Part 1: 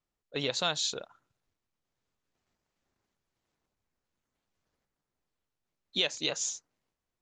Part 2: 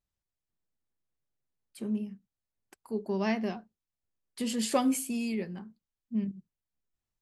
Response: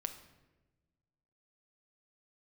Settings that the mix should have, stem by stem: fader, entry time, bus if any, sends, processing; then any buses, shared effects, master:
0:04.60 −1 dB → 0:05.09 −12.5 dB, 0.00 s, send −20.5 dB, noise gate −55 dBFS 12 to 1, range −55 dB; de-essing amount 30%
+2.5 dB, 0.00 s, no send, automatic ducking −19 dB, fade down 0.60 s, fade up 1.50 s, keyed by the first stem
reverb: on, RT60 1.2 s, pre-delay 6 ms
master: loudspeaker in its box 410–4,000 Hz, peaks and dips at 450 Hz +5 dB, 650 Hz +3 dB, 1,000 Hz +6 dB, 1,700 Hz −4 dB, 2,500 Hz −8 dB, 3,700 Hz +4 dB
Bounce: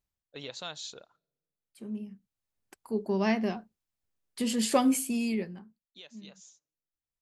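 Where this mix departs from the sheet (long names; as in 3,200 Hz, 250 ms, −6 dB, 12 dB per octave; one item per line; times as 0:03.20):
stem 1 −1.0 dB → −10.5 dB
master: missing loudspeaker in its box 410–4,000 Hz, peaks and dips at 450 Hz +5 dB, 650 Hz +3 dB, 1,000 Hz +6 dB, 1,700 Hz −4 dB, 2,500 Hz −8 dB, 3,700 Hz +4 dB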